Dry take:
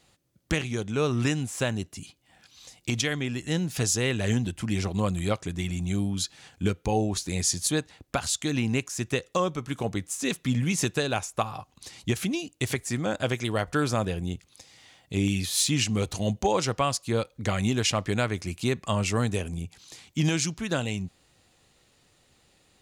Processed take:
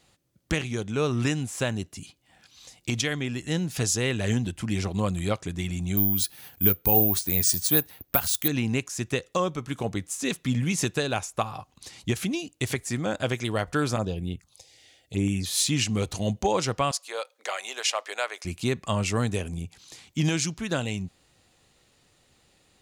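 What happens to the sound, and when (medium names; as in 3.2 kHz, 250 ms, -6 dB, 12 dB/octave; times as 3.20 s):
5.97–8.48 s: careless resampling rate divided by 3×, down filtered, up zero stuff
13.96–15.46 s: touch-sensitive phaser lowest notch 160 Hz, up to 4.4 kHz, full sweep at -21.5 dBFS
16.91–18.45 s: inverse Chebyshev high-pass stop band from 160 Hz, stop band 60 dB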